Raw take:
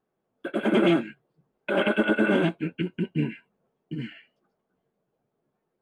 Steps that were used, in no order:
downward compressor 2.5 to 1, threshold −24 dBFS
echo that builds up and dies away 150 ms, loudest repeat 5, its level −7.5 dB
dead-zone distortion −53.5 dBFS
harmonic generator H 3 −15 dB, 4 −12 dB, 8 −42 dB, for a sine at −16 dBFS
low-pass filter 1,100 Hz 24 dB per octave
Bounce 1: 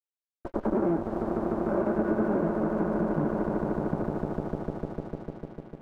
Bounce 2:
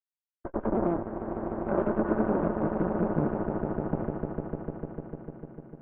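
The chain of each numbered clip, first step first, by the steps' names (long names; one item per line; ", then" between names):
echo that builds up and dies away, then harmonic generator, then low-pass filter, then dead-zone distortion, then downward compressor
downward compressor, then echo that builds up and dies away, then dead-zone distortion, then harmonic generator, then low-pass filter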